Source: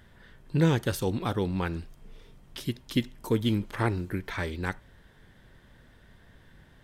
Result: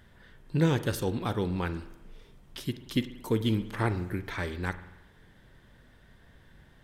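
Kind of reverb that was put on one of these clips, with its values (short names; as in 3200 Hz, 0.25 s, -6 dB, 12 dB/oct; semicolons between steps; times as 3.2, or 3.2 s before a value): spring tank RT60 1 s, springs 45 ms, chirp 35 ms, DRR 12.5 dB; gain -1.5 dB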